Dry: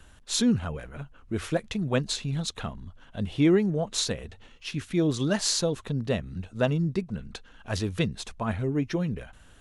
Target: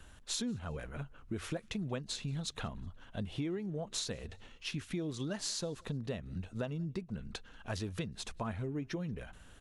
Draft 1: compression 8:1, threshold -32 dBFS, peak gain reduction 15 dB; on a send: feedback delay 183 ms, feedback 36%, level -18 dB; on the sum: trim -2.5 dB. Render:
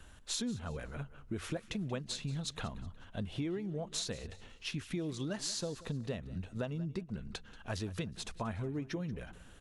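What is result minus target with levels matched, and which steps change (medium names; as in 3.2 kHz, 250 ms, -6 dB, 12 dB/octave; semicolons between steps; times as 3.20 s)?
echo-to-direct +10.5 dB
change: feedback delay 183 ms, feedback 36%, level -28.5 dB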